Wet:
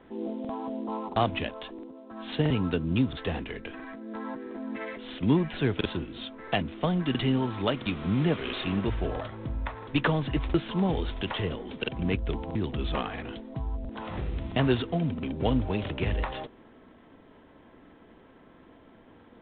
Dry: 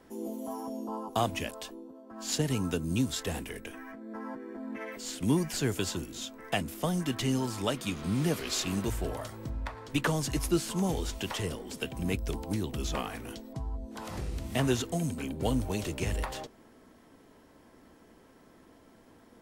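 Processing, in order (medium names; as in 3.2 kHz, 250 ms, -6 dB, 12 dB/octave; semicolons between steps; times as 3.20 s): crackling interface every 0.67 s, samples 2048, repeat, from 0.40 s; trim +3.5 dB; IMA ADPCM 32 kbps 8 kHz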